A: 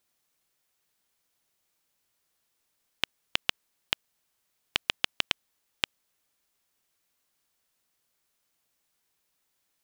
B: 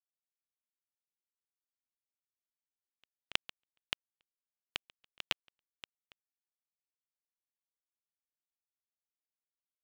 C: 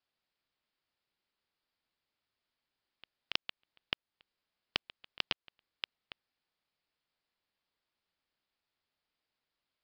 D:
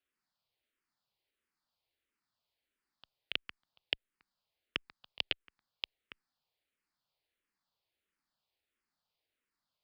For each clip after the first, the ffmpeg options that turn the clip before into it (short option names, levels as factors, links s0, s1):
-filter_complex "[0:a]acrusher=bits=6:dc=4:mix=0:aa=0.000001,asplit=2[s0][s1];[s1]adelay=279.9,volume=0.126,highshelf=f=4000:g=-6.3[s2];[s0][s2]amix=inputs=2:normalize=0,aeval=exprs='val(0)*pow(10,-40*(0.5-0.5*cos(2*PI*1.5*n/s))/20)':c=same,volume=0.668"
-af "alimiter=limit=0.126:level=0:latency=1:release=361,aresample=11025,aeval=exprs='clip(val(0),-1,0.0211)':c=same,aresample=44100,volume=4.47"
-filter_complex "[0:a]asplit=2[s0][s1];[s1]afreqshift=-1.5[s2];[s0][s2]amix=inputs=2:normalize=1,volume=1.19"